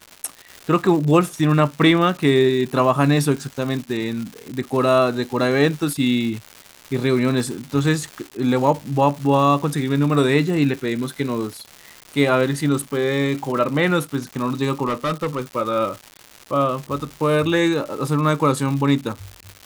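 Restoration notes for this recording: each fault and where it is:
surface crackle 320 per second −28 dBFS
0:14.87–0:15.42: clipping −18 dBFS

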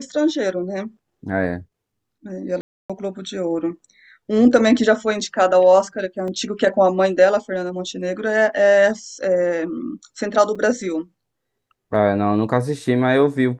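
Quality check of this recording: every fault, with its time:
0:02.61–0:02.90: drop-out 286 ms
0:06.28: drop-out 2 ms
0:10.55: drop-out 4.9 ms

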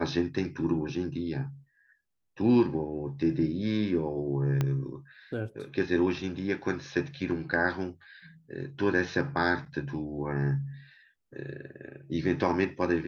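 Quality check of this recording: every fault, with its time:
0:04.61: click −15 dBFS

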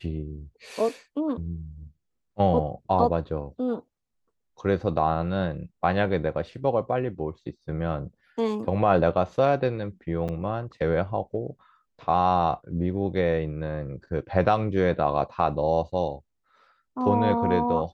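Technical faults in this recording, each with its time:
0:10.28–0:10.29: drop-out 7.8 ms

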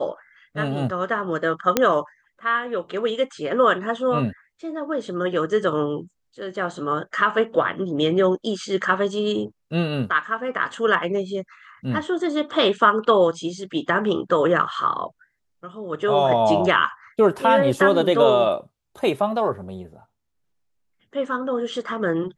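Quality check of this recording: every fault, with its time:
0:01.77: click −2 dBFS

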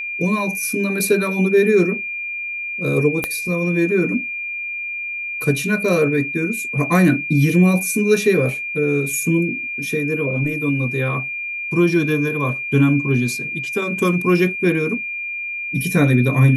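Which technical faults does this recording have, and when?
whistle 2,400 Hz −24 dBFS
0:03.24: click −6 dBFS

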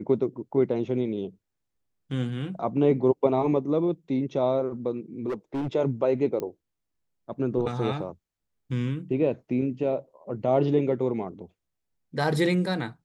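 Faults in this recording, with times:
0:05.28–0:05.68: clipping −26 dBFS
0:06.40: click −19 dBFS

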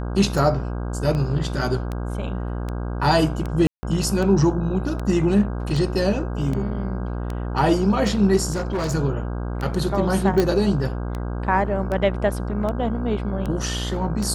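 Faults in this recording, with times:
mains buzz 60 Hz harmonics 27 −27 dBFS
scratch tick 78 rpm
0:03.67–0:03.83: drop-out 160 ms
0:08.51–0:08.95: clipping −20.5 dBFS
0:10.40: click −8 dBFS

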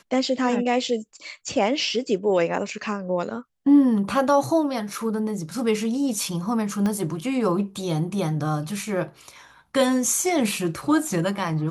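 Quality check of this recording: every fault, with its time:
0:06.86: click −15 dBFS

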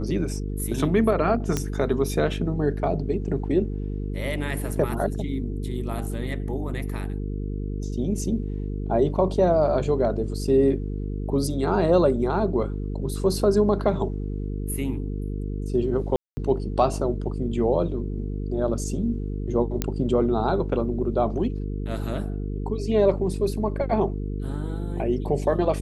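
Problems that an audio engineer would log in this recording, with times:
mains buzz 50 Hz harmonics 9 −29 dBFS
0:01.57: click −10 dBFS
0:16.16–0:16.37: drop-out 210 ms
0:19.82: click −9 dBFS

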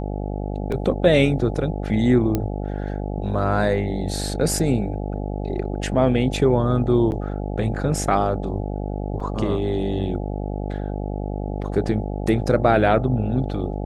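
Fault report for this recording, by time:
mains buzz 50 Hz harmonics 17 −27 dBFS
0:00.72: drop-out 2.7 ms
0:02.35: click −9 dBFS
0:07.11–0:07.12: drop-out 9.9 ms
0:09.20: drop-out 4.1 ms

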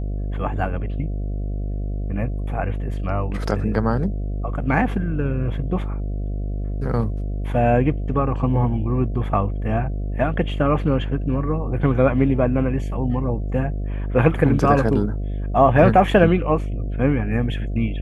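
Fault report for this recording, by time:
mains buzz 50 Hz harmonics 14 −25 dBFS

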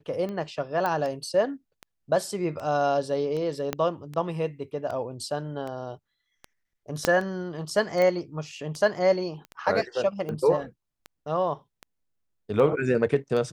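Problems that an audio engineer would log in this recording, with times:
scratch tick 78 rpm −23 dBFS
0:00.86: click −15 dBFS
0:03.73: click −12 dBFS
0:07.05: click −7 dBFS
0:08.02: click −15 dBFS
0:09.45: click −28 dBFS

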